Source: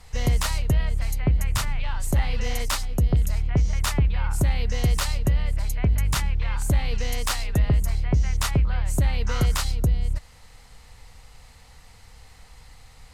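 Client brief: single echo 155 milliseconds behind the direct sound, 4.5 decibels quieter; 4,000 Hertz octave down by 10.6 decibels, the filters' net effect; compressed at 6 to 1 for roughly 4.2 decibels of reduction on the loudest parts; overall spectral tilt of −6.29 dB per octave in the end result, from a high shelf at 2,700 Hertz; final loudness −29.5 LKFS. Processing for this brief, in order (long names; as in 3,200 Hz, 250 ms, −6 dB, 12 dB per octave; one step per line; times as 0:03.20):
high-shelf EQ 2,700 Hz −6.5 dB
parametric band 4,000 Hz −8.5 dB
downward compressor 6 to 1, threshold −20 dBFS
single-tap delay 155 ms −4.5 dB
level −2.5 dB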